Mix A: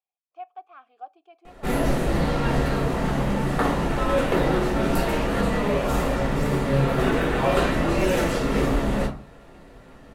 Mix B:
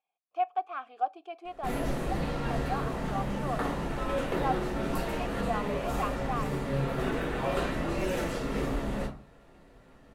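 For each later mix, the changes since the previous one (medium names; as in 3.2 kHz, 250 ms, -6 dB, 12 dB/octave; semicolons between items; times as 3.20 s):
speech +10.0 dB; background -9.0 dB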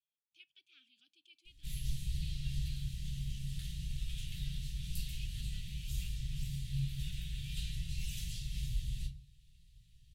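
background: add Chebyshev band-stop 110–1100 Hz, order 2; master: add elliptic band-stop 160–3300 Hz, stop band 60 dB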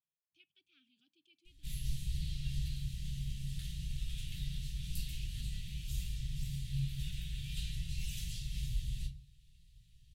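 speech: add tilt shelf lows +8 dB, about 740 Hz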